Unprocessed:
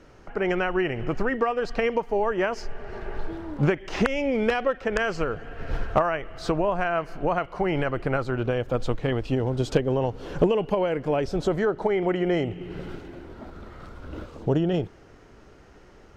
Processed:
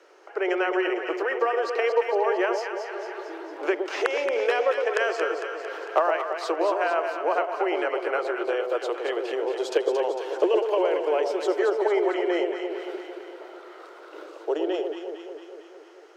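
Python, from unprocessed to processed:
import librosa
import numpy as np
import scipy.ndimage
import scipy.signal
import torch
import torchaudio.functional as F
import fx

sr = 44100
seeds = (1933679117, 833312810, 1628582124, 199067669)

p1 = scipy.signal.sosfilt(scipy.signal.butter(12, 340.0, 'highpass', fs=sr, output='sos'), x)
y = p1 + fx.echo_alternate(p1, sr, ms=113, hz=920.0, feedback_pct=78, wet_db=-4.5, dry=0)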